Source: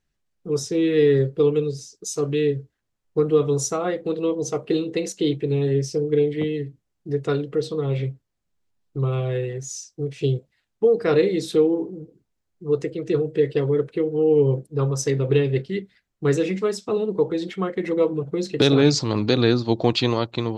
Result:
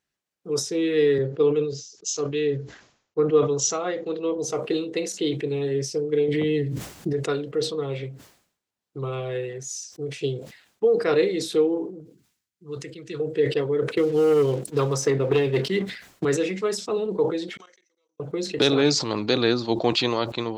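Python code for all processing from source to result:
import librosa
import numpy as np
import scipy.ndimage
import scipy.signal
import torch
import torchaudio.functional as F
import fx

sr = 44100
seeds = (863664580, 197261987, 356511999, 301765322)

y = fx.chain(x, sr, fx.resample_bad(factor=3, down='none', up='filtered'),
    fx.band_widen(depth_pct=40), at=(1.18, 4.38))
y = fx.chain(y, sr, fx.highpass(hz=59.0, slope=12),
    fx.low_shelf(hz=140.0, db=11.5),
    fx.env_flatten(amount_pct=100), at=(6.28, 7.13))
y = fx.chain(y, sr, fx.highpass(hz=57.0, slope=12),
    fx.peak_eq(hz=580.0, db=-14.0, octaves=2.1), at=(12.0, 13.2))
y = fx.chain(y, sr, fx.leveller(passes=1),
    fx.band_squash(depth_pct=70), at=(13.97, 16.25))
y = fx.chain(y, sr, fx.level_steps(step_db=24),
    fx.bandpass_q(hz=6000.0, q=18.0), at=(17.57, 18.2))
y = fx.highpass(y, sr, hz=380.0, slope=6)
y = fx.sustainer(y, sr, db_per_s=100.0)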